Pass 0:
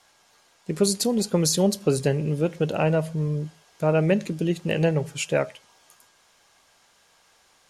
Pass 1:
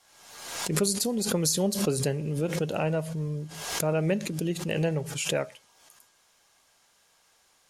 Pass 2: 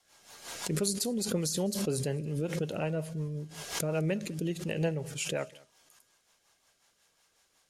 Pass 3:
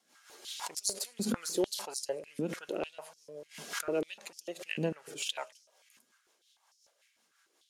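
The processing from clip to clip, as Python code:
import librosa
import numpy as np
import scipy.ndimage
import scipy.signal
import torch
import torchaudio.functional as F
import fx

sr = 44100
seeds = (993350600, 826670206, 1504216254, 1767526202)

y1 = fx.high_shelf(x, sr, hz=7700.0, db=8.0)
y1 = fx.pre_swell(y1, sr, db_per_s=52.0)
y1 = y1 * librosa.db_to_amplitude(-6.0)
y2 = fx.rotary(y1, sr, hz=5.5)
y2 = y2 + 10.0 ** (-24.0 / 20.0) * np.pad(y2, (int(204 * sr / 1000.0), 0))[:len(y2)]
y2 = y2 * librosa.db_to_amplitude(-2.5)
y3 = np.where(y2 < 0.0, 10.0 ** (-3.0 / 20.0) * y2, y2)
y3 = fx.filter_held_highpass(y3, sr, hz=6.7, low_hz=230.0, high_hz=5400.0)
y3 = y3 * librosa.db_to_amplitude(-3.0)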